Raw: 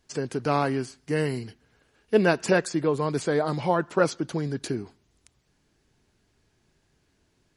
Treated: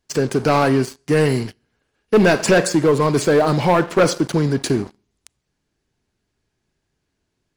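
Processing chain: Schroeder reverb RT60 0.52 s, combs from 30 ms, DRR 15 dB; sample leveller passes 3

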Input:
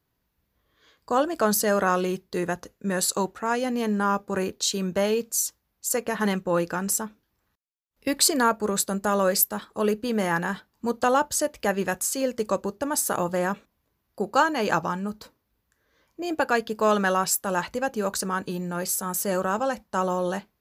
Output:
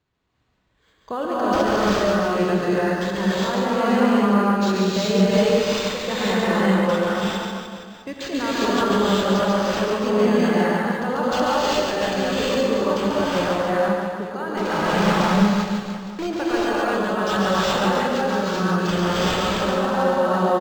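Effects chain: limiter -18 dBFS, peak gain reduction 11 dB; 14.57–16.27 companded quantiser 2-bit; tremolo 0.8 Hz, depth 44%; on a send: reverse bouncing-ball echo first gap 0.14 s, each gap 1.1×, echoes 5; on the sum: non-linear reverb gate 0.43 s rising, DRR -7.5 dB; decimation joined by straight lines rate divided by 4×

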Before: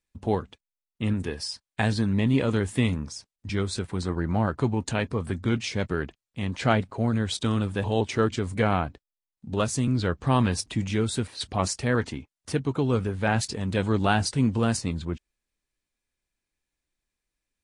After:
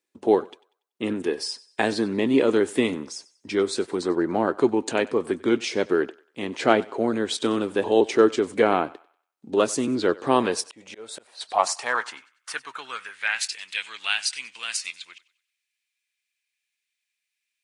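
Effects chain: thinning echo 95 ms, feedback 37%, high-pass 500 Hz, level -20 dB; 10.66–11.49 auto swell 0.444 s; high-pass sweep 350 Hz -> 2400 Hz, 10.24–13.58; gain +2.5 dB

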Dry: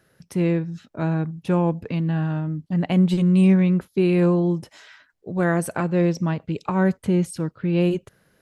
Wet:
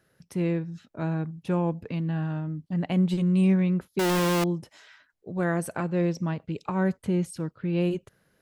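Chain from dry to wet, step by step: 3.99–4.44 infinite clipping; gain -5.5 dB

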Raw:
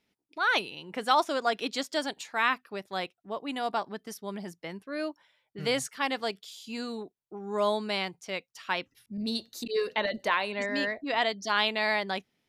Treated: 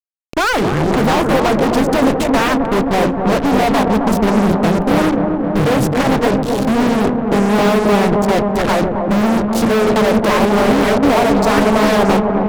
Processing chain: HPF 70 Hz 6 dB/oct; notches 60/120/180/240/300/360/420/480 Hz; sample leveller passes 2; bell 3900 Hz -13.5 dB 2.1 oct; compressor 12:1, threshold -35 dBFS, peak gain reduction 18 dB; RIAA curve playback; fuzz box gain 50 dB, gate -54 dBFS; dark delay 0.265 s, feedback 76%, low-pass 940 Hz, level -3.5 dB; Doppler distortion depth 0.71 ms

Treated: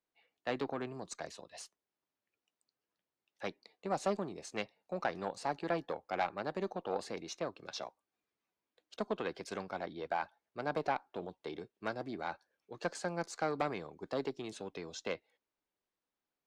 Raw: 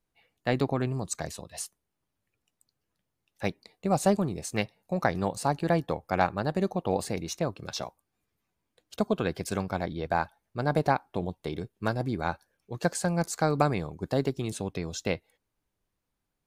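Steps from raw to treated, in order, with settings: tube stage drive 17 dB, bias 0.4; three-band isolator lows -17 dB, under 240 Hz, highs -22 dB, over 6700 Hz; gain -4.5 dB

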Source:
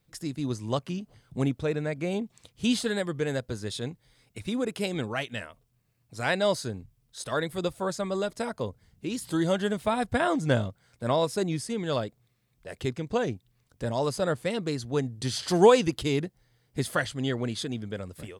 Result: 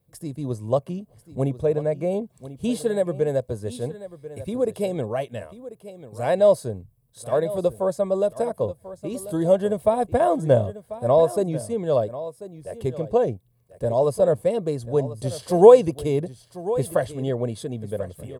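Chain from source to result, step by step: HPF 51 Hz; band shelf 2900 Hz -12 dB 2.9 oct; comb 1.8 ms, depth 37%; dynamic EQ 630 Hz, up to +5 dB, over -40 dBFS, Q 1.1; on a send: echo 1.041 s -15 dB; on the sum: gain +3 dB

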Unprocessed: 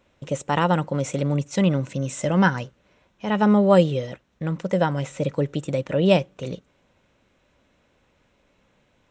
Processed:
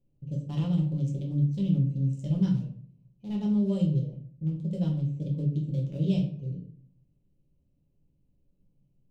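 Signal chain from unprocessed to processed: Wiener smoothing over 25 samples; EQ curve 150 Hz 0 dB, 1600 Hz -30 dB, 3100 Hz -9 dB; limiter -19 dBFS, peak gain reduction 5.5 dB; high shelf 3800 Hz +6 dB; shoebox room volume 51 m³, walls mixed, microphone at 0.85 m; gain -7.5 dB

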